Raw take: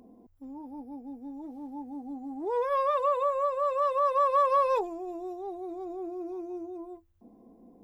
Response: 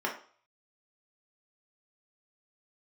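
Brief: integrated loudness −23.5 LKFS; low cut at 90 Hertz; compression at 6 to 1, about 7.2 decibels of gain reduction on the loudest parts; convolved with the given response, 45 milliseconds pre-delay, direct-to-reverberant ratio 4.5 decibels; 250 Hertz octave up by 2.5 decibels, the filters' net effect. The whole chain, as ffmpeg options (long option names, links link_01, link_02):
-filter_complex "[0:a]highpass=90,equalizer=frequency=250:width_type=o:gain=3.5,acompressor=threshold=-28dB:ratio=6,asplit=2[link_01][link_02];[1:a]atrim=start_sample=2205,adelay=45[link_03];[link_02][link_03]afir=irnorm=-1:irlink=0,volume=-12.5dB[link_04];[link_01][link_04]amix=inputs=2:normalize=0,volume=9.5dB"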